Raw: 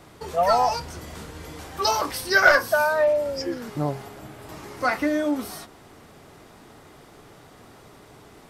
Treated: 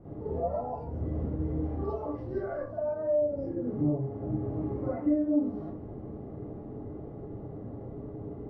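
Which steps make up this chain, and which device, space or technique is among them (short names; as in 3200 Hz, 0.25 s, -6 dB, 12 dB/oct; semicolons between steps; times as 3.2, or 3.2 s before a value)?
television next door (compressor 3:1, threshold -38 dBFS, peak gain reduction 20 dB; LPF 380 Hz 12 dB/oct; reverb RT60 0.45 s, pre-delay 38 ms, DRR -10 dB)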